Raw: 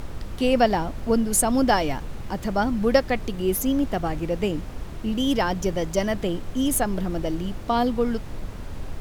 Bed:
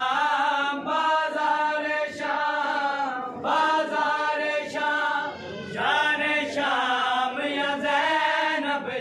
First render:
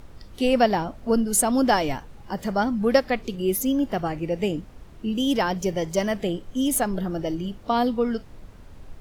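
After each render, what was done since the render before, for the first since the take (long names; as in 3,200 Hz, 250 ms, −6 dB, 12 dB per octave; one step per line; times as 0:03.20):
noise reduction from a noise print 11 dB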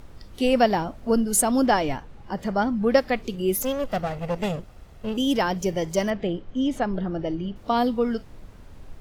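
0:01.66–0:02.98: high-shelf EQ 6,400 Hz −10.5 dB
0:03.62–0:05.17: lower of the sound and its delayed copy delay 1.5 ms
0:06.10–0:07.56: high-frequency loss of the air 180 metres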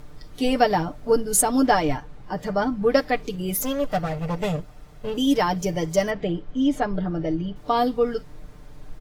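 parametric band 2,800 Hz −3 dB 0.28 octaves
comb filter 6.7 ms, depth 70%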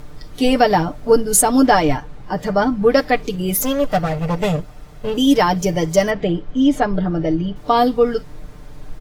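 level +6.5 dB
brickwall limiter −2 dBFS, peak gain reduction 3 dB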